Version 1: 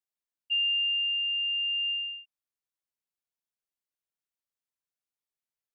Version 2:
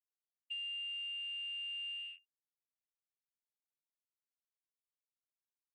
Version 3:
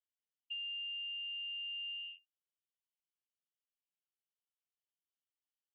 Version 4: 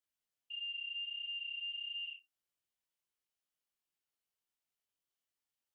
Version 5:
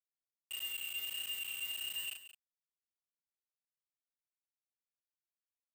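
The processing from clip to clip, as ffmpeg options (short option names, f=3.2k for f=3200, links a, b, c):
-af "afwtdn=0.0141,equalizer=f=2.6k:w=5:g=-8,acompressor=threshold=-35dB:ratio=6,volume=-5dB"
-af "bandpass=f=3k:t=q:w=8.9:csg=0,volume=4dB"
-af "alimiter=level_in=18dB:limit=-24dB:level=0:latency=1,volume=-18dB,flanger=delay=18.5:depth=2.6:speed=1.5,volume=6dB"
-filter_complex "[0:a]acrusher=bits=6:mix=0:aa=0.000001,asplit=2[a][b];[b]adelay=37,volume=-2.5dB[c];[a][c]amix=inputs=2:normalize=0,aecho=1:1:179:0.211"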